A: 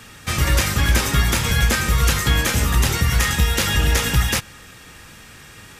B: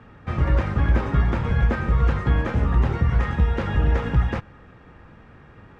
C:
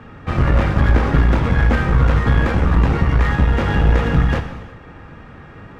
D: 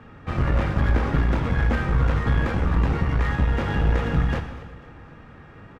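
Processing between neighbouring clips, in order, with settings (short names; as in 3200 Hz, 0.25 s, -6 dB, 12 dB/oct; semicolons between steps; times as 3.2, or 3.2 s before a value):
LPF 1100 Hz 12 dB/oct; gain -1 dB
one-sided clip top -27.5 dBFS; non-linear reverb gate 0.4 s falling, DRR 6 dB; gain +8 dB
feedback echo 0.246 s, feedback 51%, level -19 dB; gain -6.5 dB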